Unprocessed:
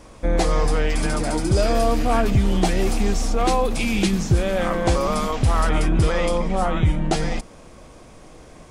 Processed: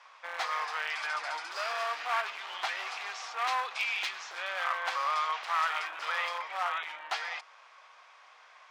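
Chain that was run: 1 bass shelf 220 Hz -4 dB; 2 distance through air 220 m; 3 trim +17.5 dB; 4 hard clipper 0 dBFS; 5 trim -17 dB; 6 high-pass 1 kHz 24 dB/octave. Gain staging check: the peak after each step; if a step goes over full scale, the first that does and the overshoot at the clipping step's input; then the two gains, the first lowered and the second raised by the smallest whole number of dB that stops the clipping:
-9.0 dBFS, -10.0 dBFS, +7.5 dBFS, 0.0 dBFS, -17.0 dBFS, -17.5 dBFS; step 3, 7.5 dB; step 3 +9.5 dB, step 5 -9 dB

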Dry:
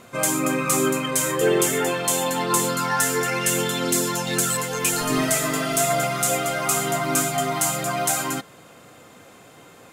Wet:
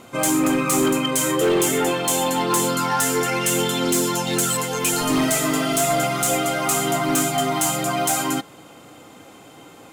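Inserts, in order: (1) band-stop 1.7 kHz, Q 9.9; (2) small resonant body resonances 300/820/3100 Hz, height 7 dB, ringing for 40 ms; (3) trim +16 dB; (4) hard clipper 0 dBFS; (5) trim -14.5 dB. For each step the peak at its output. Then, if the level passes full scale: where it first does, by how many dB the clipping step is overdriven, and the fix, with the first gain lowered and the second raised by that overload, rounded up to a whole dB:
-6.5 dBFS, -6.5 dBFS, +9.5 dBFS, 0.0 dBFS, -14.5 dBFS; step 3, 9.5 dB; step 3 +6 dB, step 5 -4.5 dB

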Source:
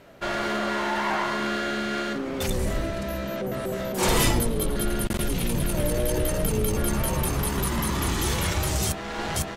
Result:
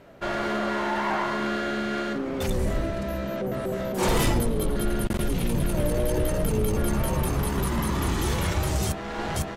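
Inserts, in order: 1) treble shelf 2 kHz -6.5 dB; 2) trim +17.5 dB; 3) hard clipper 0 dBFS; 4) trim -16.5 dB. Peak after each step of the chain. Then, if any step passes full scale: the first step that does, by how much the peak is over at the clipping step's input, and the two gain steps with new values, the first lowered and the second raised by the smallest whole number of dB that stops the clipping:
-10.5 dBFS, +7.0 dBFS, 0.0 dBFS, -16.5 dBFS; step 2, 7.0 dB; step 2 +10.5 dB, step 4 -9.5 dB

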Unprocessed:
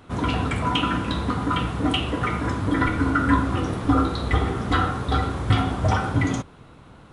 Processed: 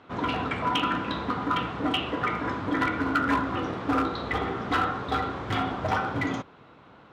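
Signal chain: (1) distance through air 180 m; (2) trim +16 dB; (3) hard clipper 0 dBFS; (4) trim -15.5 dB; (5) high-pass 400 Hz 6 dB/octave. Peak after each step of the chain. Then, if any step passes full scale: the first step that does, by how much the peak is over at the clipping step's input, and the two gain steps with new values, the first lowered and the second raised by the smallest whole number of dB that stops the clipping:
-7.0 dBFS, +9.0 dBFS, 0.0 dBFS, -15.5 dBFS, -12.5 dBFS; step 2, 9.0 dB; step 2 +7 dB, step 4 -6.5 dB

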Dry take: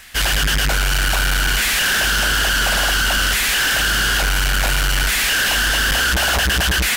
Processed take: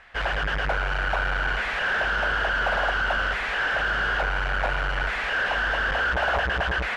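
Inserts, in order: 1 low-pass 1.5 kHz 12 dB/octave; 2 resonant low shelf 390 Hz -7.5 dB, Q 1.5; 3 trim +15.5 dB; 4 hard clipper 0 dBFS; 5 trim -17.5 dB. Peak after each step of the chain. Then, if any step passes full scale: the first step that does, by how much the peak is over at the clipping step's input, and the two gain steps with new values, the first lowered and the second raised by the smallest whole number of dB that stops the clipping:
-15.0 dBFS, -12.5 dBFS, +3.0 dBFS, 0.0 dBFS, -17.5 dBFS; step 3, 3.0 dB; step 3 +12.5 dB, step 5 -14.5 dB

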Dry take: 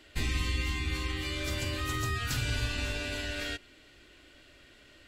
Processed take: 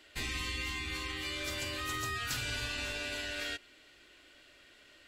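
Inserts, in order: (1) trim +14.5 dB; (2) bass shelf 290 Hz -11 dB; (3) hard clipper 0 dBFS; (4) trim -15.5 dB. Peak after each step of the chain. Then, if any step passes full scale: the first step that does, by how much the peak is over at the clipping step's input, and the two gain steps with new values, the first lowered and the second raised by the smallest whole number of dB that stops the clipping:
-4.5 dBFS, -6.0 dBFS, -6.0 dBFS, -21.5 dBFS; nothing clips

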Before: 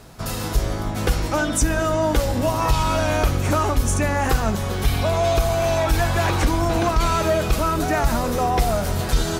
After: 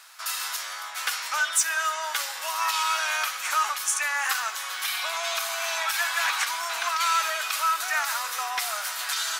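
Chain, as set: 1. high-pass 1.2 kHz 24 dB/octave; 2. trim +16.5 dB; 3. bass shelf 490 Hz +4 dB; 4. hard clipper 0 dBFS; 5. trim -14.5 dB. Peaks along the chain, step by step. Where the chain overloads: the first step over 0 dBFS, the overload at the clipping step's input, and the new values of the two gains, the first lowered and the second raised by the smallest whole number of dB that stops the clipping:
-11.0 dBFS, +5.5 dBFS, +5.5 dBFS, 0.0 dBFS, -14.5 dBFS; step 2, 5.5 dB; step 2 +10.5 dB, step 5 -8.5 dB

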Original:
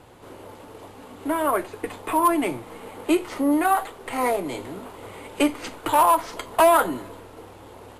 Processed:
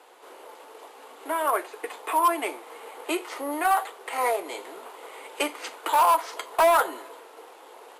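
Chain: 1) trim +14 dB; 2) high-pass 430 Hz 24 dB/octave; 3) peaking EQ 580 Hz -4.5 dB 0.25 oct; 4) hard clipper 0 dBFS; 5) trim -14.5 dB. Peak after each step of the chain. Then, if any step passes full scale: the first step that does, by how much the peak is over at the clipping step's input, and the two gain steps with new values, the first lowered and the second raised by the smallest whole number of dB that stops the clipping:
+4.5 dBFS, +8.0 dBFS, +7.5 dBFS, 0.0 dBFS, -14.5 dBFS; step 1, 7.5 dB; step 1 +6 dB, step 5 -6.5 dB

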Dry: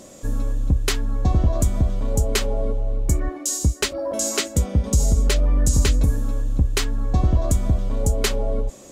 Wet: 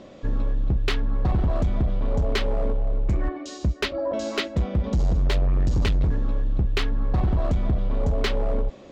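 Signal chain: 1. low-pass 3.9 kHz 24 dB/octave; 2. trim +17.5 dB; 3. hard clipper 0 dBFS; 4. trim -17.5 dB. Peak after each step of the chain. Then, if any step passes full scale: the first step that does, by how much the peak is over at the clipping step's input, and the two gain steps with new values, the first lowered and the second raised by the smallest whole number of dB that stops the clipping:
-7.5 dBFS, +10.0 dBFS, 0.0 dBFS, -17.5 dBFS; step 2, 10.0 dB; step 2 +7.5 dB, step 4 -7.5 dB

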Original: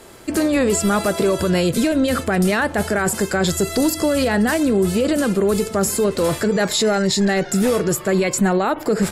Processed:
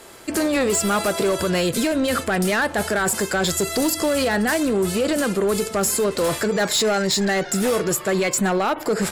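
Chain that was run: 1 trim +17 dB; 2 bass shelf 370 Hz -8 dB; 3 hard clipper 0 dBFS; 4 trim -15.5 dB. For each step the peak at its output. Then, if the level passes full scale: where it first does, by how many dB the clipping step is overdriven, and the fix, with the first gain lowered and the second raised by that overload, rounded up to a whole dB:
+8.0 dBFS, +7.5 dBFS, 0.0 dBFS, -15.5 dBFS; step 1, 7.5 dB; step 1 +9 dB, step 4 -7.5 dB

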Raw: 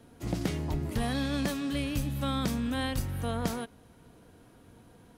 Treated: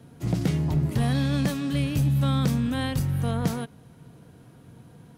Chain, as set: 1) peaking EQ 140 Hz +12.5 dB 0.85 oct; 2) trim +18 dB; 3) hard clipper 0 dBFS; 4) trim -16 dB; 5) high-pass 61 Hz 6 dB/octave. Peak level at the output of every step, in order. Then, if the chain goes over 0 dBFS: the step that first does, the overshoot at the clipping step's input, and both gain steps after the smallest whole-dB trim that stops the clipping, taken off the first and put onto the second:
-12.5 dBFS, +5.5 dBFS, 0.0 dBFS, -16.0 dBFS, -13.5 dBFS; step 2, 5.5 dB; step 2 +12 dB, step 4 -10 dB

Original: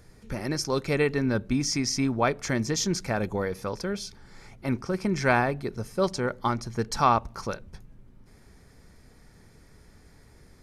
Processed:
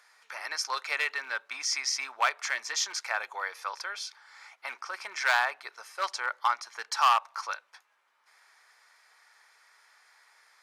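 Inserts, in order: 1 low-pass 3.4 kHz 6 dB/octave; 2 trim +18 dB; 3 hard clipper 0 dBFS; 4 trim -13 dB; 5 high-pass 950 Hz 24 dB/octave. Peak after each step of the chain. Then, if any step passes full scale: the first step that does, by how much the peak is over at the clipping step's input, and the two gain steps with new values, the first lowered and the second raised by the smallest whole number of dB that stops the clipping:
-8.5 dBFS, +9.5 dBFS, 0.0 dBFS, -13.0 dBFS, -12.0 dBFS; step 2, 9.5 dB; step 2 +8 dB, step 4 -3 dB

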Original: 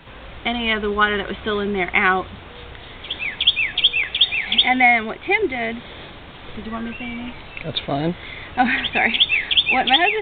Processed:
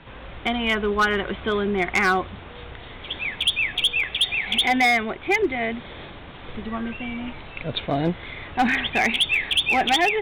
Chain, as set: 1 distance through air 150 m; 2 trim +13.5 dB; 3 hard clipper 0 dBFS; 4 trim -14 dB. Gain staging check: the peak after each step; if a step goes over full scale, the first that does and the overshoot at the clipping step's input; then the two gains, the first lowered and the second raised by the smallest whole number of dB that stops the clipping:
-4.0 dBFS, +9.5 dBFS, 0.0 dBFS, -14.0 dBFS; step 2, 9.5 dB; step 2 +3.5 dB, step 4 -4 dB

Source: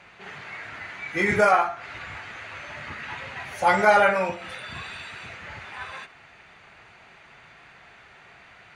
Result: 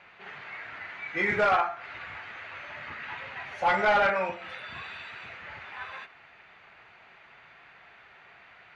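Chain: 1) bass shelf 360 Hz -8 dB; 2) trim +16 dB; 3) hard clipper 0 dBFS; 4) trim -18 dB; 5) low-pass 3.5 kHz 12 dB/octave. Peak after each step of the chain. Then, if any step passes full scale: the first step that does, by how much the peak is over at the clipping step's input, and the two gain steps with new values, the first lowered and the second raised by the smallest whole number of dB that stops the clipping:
-7.5 dBFS, +8.5 dBFS, 0.0 dBFS, -18.0 dBFS, -17.5 dBFS; step 2, 8.5 dB; step 2 +7 dB, step 4 -9 dB

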